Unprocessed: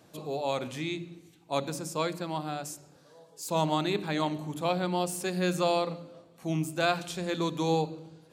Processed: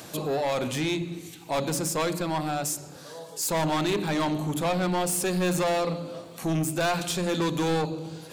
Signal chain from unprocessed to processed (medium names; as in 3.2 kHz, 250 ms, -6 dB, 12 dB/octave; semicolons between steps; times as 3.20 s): treble shelf 7.6 kHz +5 dB; in parallel at -1.5 dB: compression, threshold -40 dBFS, peak gain reduction 17.5 dB; on the sum: saturation -28.5 dBFS, distortion -8 dB; tape noise reduction on one side only encoder only; trim +7 dB